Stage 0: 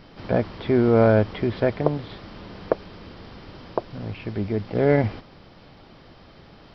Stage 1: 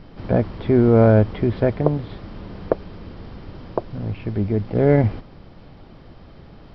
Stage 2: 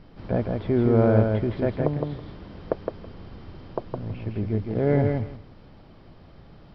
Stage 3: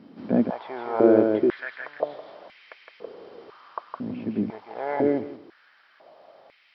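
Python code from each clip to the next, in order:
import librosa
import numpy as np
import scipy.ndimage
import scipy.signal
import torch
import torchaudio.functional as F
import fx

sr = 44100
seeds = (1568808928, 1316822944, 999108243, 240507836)

y1 = fx.tilt_eq(x, sr, slope=-2.0)
y2 = fx.echo_feedback(y1, sr, ms=163, feedback_pct=16, wet_db=-4)
y2 = F.gain(torch.from_numpy(y2), -6.5).numpy()
y3 = fx.filter_held_highpass(y2, sr, hz=2.0, low_hz=240.0, high_hz=2200.0)
y3 = F.gain(torch.from_numpy(y3), -1.5).numpy()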